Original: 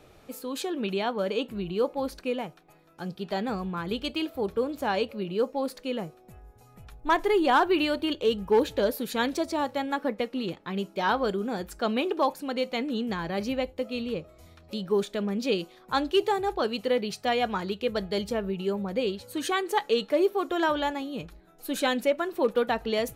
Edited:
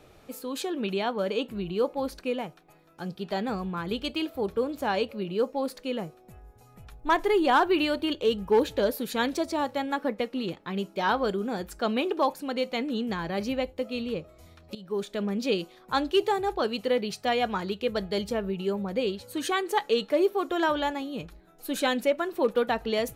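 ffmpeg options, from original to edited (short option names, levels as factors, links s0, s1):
-filter_complex "[0:a]asplit=2[s0][s1];[s0]atrim=end=14.75,asetpts=PTS-STARTPTS,afade=t=out:st=14.746:d=0.004:c=hsin:silence=0.177828[s2];[s1]atrim=start=14.75,asetpts=PTS-STARTPTS,afade=t=in:d=0.48:silence=0.177828[s3];[s2][s3]concat=n=2:v=0:a=1"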